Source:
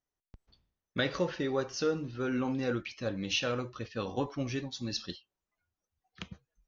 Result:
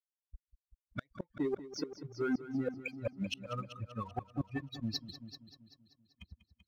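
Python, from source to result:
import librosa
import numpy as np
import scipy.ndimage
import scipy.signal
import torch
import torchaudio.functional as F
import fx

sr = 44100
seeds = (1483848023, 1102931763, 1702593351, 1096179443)

y = fx.bin_expand(x, sr, power=3.0)
y = fx.air_absorb(y, sr, metres=180.0)
y = fx.gate_flip(y, sr, shuts_db=-30.0, range_db=-38)
y = fx.leveller(y, sr, passes=1)
y = fx.echo_heads(y, sr, ms=193, heads='first and second', feedback_pct=41, wet_db=-14.5)
y = y * librosa.db_to_amplitude(4.5)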